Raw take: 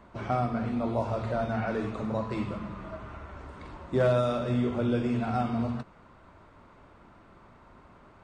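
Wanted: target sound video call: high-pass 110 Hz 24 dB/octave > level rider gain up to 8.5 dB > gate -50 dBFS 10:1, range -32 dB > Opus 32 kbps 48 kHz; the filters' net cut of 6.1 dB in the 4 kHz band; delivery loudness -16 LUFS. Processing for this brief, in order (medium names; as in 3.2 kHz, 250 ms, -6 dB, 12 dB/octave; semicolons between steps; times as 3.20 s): high-pass 110 Hz 24 dB/octave; peaking EQ 4 kHz -7.5 dB; level rider gain up to 8.5 dB; gate -50 dBFS 10:1, range -32 dB; trim +14 dB; Opus 32 kbps 48 kHz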